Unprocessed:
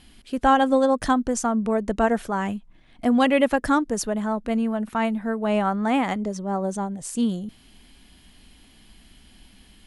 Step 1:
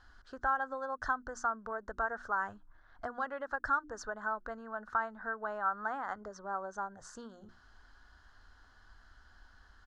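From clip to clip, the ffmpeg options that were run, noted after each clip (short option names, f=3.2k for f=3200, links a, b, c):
-af "bandreject=f=60:t=h:w=6,bandreject=f=120:t=h:w=6,bandreject=f=180:t=h:w=6,bandreject=f=240:t=h:w=6,bandreject=f=300:t=h:w=6,bandreject=f=360:t=h:w=6,acompressor=threshold=-28dB:ratio=5,firequalizer=gain_entry='entry(100,0);entry(150,-17);entry(420,-5);entry(1500,15);entry(2300,-19);entry(4300,-5);entry(6400,-5);entry(9700,-27)':delay=0.05:min_phase=1,volume=-6.5dB"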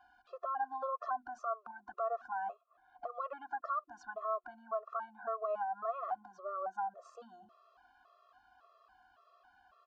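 -filter_complex "[0:a]asplit=3[a][b][c];[a]bandpass=f=730:t=q:w=8,volume=0dB[d];[b]bandpass=f=1.09k:t=q:w=8,volume=-6dB[e];[c]bandpass=f=2.44k:t=q:w=8,volume=-9dB[f];[d][e][f]amix=inputs=3:normalize=0,alimiter=level_in=16dB:limit=-24dB:level=0:latency=1:release=61,volume=-16dB,afftfilt=real='re*gt(sin(2*PI*1.8*pts/sr)*(1-2*mod(floor(b*sr/1024/350),2)),0)':imag='im*gt(sin(2*PI*1.8*pts/sr)*(1-2*mod(floor(b*sr/1024/350),2)),0)':win_size=1024:overlap=0.75,volume=14.5dB"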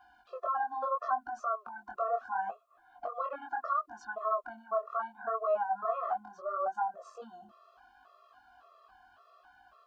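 -af "flanger=delay=17.5:depth=7:speed=0.73,volume=8dB"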